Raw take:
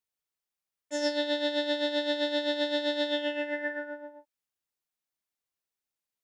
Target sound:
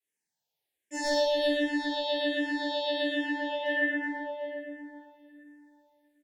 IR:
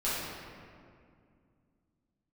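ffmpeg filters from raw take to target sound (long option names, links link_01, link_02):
-filter_complex "[0:a]highpass=frequency=180:poles=1,asettb=1/sr,asplit=3[link_01][link_02][link_03];[link_01]atrim=end=1.154[link_04];[link_02]atrim=start=1.15:end=3.64,asetpts=PTS-STARTPTS,afade=type=in:duration=0.004:curve=qsin,afade=type=out:start_time=2.486:duration=0.004:curve=qsin,acompressor=threshold=-31dB:ratio=6[link_05];[link_03]atrim=start=3.636[link_06];[link_04][link_05]acrossfade=duration=0.004:curve1=hsin:curve2=qsin[link_07];[link_07][link_06]acrossfade=duration=0.004:curve1=qsin:curve2=hsin,asoftclip=type=hard:threshold=-24dB,asuperstop=centerf=1200:order=20:qfactor=2,aecho=1:1:374|748|1122|1496:0.282|0.11|0.0429|0.0167[link_08];[1:a]atrim=start_sample=2205,asetrate=33516,aresample=44100[link_09];[link_08][link_09]afir=irnorm=-1:irlink=0,asplit=2[link_10][link_11];[link_11]afreqshift=-1.3[link_12];[link_10][link_12]amix=inputs=2:normalize=1"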